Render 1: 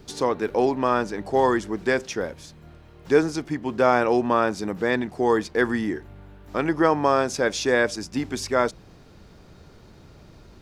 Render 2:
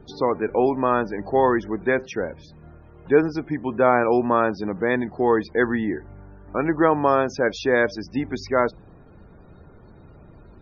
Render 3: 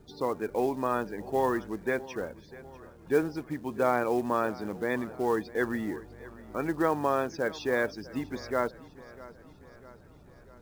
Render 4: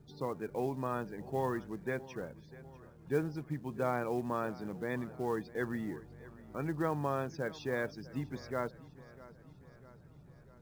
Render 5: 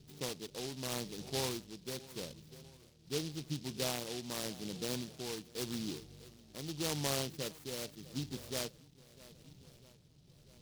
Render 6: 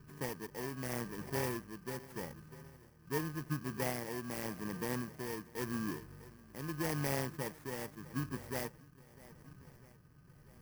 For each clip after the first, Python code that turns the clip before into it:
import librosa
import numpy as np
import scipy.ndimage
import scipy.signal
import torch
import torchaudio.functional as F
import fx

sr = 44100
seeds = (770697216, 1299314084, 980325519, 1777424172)

y1 = fx.peak_eq(x, sr, hz=9200.0, db=-14.0, octaves=1.2)
y1 = fx.spec_topn(y1, sr, count=64)
y1 = y1 * 10.0 ** (1.5 / 20.0)
y2 = fx.quant_companded(y1, sr, bits=6)
y2 = fx.echo_feedback(y2, sr, ms=647, feedback_pct=56, wet_db=-19.0)
y2 = y2 * 10.0 ** (-8.5 / 20.0)
y3 = fx.peak_eq(y2, sr, hz=140.0, db=12.5, octaves=0.73)
y3 = y3 * 10.0 ** (-8.0 / 20.0)
y4 = y3 * (1.0 - 0.54 / 2.0 + 0.54 / 2.0 * np.cos(2.0 * np.pi * 0.84 * (np.arange(len(y3)) / sr)))
y4 = fx.noise_mod_delay(y4, sr, seeds[0], noise_hz=4100.0, depth_ms=0.22)
y4 = y4 * 10.0 ** (-1.0 / 20.0)
y5 = fx.bit_reversed(y4, sr, seeds[1], block=32)
y5 = fx.high_shelf_res(y5, sr, hz=2400.0, db=-7.5, q=1.5)
y5 = y5 * 10.0 ** (2.5 / 20.0)